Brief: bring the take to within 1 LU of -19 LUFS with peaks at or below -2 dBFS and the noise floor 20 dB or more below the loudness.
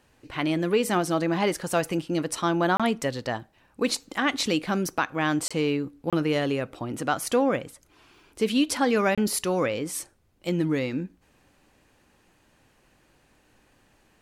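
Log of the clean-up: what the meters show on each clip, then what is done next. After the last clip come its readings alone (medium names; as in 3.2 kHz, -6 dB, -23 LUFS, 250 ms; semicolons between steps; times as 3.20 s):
dropouts 4; longest dropout 26 ms; loudness -26.5 LUFS; peak level -12.0 dBFS; loudness target -19.0 LUFS
-> interpolate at 2.77/5.48/6.10/9.15 s, 26 ms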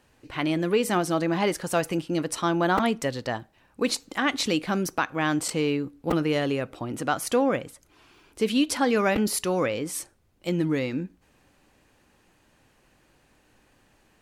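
dropouts 0; loudness -26.0 LUFS; peak level -12.0 dBFS; loudness target -19.0 LUFS
-> trim +7 dB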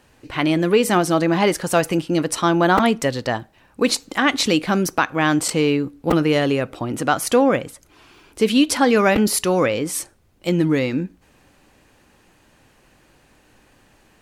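loudness -19.0 LUFS; peak level -5.0 dBFS; noise floor -56 dBFS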